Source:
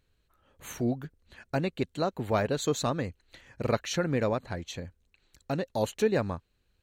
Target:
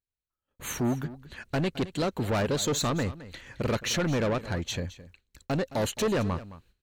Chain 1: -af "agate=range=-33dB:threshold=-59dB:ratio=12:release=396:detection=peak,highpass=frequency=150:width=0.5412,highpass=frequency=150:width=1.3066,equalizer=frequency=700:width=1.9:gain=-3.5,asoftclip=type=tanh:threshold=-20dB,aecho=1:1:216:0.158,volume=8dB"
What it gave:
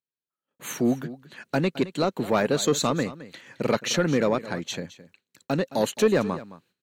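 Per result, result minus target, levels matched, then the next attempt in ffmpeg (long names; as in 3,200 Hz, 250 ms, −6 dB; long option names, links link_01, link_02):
soft clipping: distortion −9 dB; 125 Hz band −5.0 dB
-af "agate=range=-33dB:threshold=-59dB:ratio=12:release=396:detection=peak,highpass=frequency=150:width=0.5412,highpass=frequency=150:width=1.3066,equalizer=frequency=700:width=1.9:gain=-3.5,asoftclip=type=tanh:threshold=-31dB,aecho=1:1:216:0.158,volume=8dB"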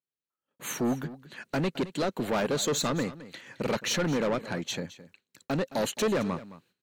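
125 Hz band −4.5 dB
-af "agate=range=-33dB:threshold=-59dB:ratio=12:release=396:detection=peak,equalizer=frequency=700:width=1.9:gain=-3.5,asoftclip=type=tanh:threshold=-31dB,aecho=1:1:216:0.158,volume=8dB"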